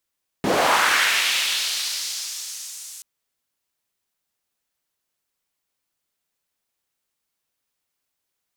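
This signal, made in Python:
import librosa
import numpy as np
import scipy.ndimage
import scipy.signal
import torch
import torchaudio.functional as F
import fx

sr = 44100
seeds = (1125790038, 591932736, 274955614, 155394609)

y = fx.riser_noise(sr, seeds[0], length_s=2.58, colour='white', kind='bandpass', start_hz=180.0, end_hz=7600.0, q=1.6, swell_db=-32.0, law='linear')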